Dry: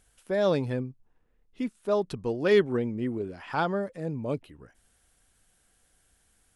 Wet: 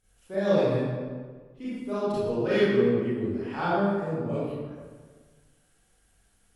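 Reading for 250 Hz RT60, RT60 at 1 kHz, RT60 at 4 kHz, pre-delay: 1.6 s, 1.5 s, 1.0 s, 28 ms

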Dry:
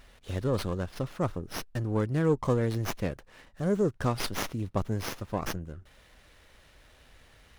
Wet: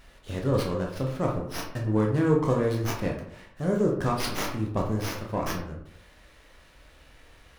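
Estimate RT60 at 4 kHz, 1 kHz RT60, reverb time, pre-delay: 0.40 s, 0.70 s, 0.70 s, 15 ms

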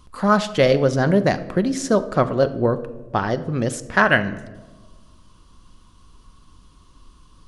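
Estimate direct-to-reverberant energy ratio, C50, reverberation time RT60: 10.5 dB, 14.5 dB, 1.3 s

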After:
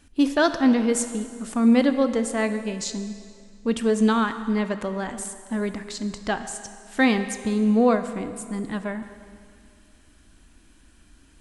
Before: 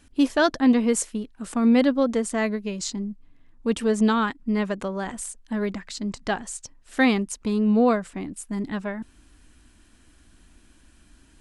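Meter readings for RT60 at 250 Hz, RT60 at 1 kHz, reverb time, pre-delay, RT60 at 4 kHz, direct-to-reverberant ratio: 2.1 s, 2.2 s, 2.2 s, 13 ms, 2.0 s, 9.0 dB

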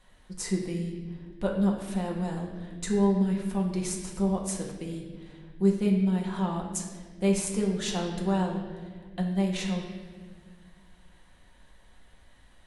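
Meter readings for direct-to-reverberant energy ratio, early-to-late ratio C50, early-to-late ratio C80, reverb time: −1.5 dB, 4.0 dB, 6.0 dB, 1.6 s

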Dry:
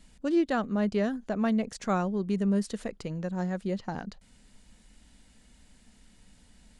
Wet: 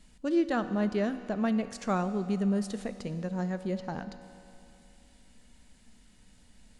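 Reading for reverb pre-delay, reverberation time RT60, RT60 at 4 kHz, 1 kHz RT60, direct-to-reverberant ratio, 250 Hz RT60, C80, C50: 4 ms, 2.8 s, 2.6 s, 2.8 s, 9.5 dB, 2.8 s, 11.5 dB, 10.5 dB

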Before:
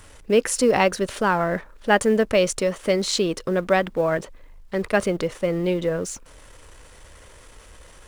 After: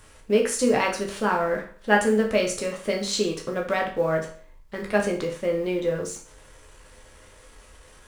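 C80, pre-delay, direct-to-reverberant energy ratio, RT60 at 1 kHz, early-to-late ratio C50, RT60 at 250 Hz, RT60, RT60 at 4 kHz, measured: 13.5 dB, 10 ms, −0.5 dB, 0.45 s, 8.5 dB, 0.45 s, 0.45 s, 0.40 s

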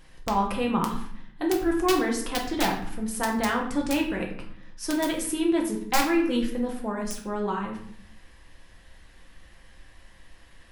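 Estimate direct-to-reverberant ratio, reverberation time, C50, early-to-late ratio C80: −1.0 dB, 0.65 s, 6.5 dB, 10.0 dB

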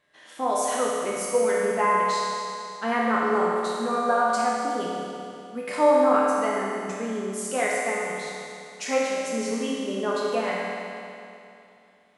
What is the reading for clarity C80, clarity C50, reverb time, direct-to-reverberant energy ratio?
−1.0 dB, −3.0 dB, 2.7 s, −6.5 dB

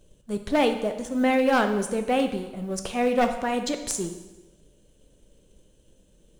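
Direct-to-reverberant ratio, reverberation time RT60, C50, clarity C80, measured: 6.5 dB, 1.1 s, 9.0 dB, 11.0 dB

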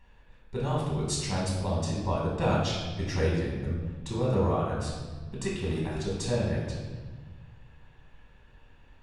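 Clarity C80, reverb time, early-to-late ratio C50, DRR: 3.5 dB, 1.4 s, 1.0 dB, −5.0 dB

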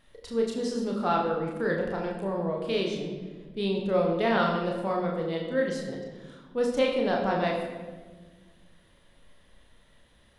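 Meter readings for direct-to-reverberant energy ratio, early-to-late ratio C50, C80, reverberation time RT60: −1.0 dB, 4.0 dB, 6.0 dB, 1.5 s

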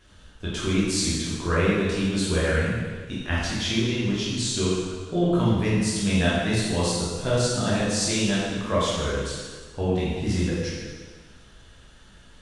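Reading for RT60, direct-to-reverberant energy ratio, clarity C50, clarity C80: 1.5 s, −8.5 dB, −2.0 dB, 1.0 dB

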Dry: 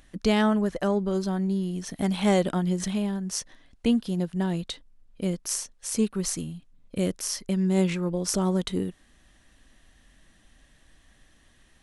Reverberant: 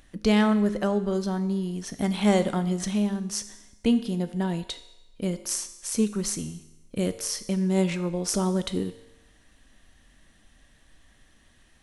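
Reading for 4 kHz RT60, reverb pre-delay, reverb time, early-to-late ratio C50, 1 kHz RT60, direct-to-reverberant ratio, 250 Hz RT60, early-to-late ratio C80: 0.95 s, 4 ms, 0.95 s, 14.0 dB, 0.95 s, 10.5 dB, 0.95 s, 15.5 dB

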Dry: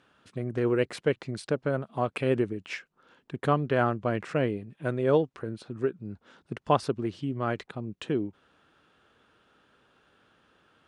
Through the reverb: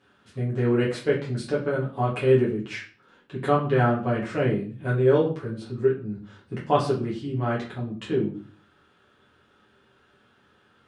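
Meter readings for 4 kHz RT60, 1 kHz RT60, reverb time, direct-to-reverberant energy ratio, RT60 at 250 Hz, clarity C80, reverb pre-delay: 0.35 s, 0.40 s, 0.45 s, −7.0 dB, 0.60 s, 12.5 dB, 7 ms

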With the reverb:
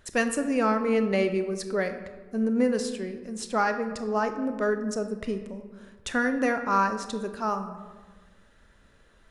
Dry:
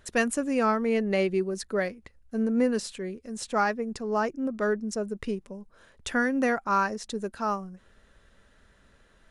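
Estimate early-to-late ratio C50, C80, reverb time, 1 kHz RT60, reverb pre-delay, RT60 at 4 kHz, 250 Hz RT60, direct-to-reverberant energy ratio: 9.0 dB, 11.0 dB, 1.4 s, 1.3 s, 24 ms, 0.75 s, 1.5 s, 8.0 dB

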